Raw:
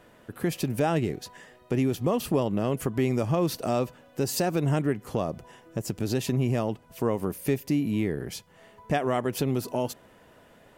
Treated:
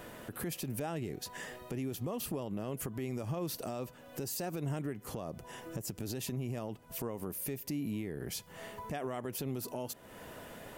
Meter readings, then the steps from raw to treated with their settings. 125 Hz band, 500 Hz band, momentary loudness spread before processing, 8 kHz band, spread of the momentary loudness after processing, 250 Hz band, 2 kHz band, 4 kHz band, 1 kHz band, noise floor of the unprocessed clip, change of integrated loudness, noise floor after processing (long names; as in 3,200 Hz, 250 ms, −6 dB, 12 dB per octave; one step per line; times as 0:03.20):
−11.0 dB, −12.5 dB, 9 LU, −4.5 dB, 7 LU, −11.5 dB, −9.5 dB, −7.5 dB, −12.0 dB, −56 dBFS, −11.5 dB, −55 dBFS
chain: downward compressor 3 to 1, threshold −44 dBFS, peak gain reduction 17.5 dB
high-shelf EQ 9,100 Hz +10 dB
brickwall limiter −35.5 dBFS, peak gain reduction 9.5 dB
level +6.5 dB